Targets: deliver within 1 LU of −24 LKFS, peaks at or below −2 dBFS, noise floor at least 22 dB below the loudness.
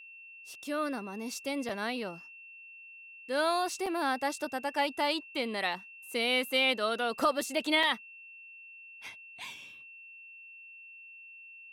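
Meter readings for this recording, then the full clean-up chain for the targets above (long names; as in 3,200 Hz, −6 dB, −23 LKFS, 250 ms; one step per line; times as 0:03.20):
number of dropouts 4; longest dropout 4.0 ms; interfering tone 2,700 Hz; level of the tone −48 dBFS; integrated loudness −31.0 LKFS; sample peak −16.5 dBFS; target loudness −24.0 LKFS
→ repair the gap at 0:01.69/0:03.86/0:07.19/0:07.83, 4 ms
notch filter 2,700 Hz, Q 30
level +7 dB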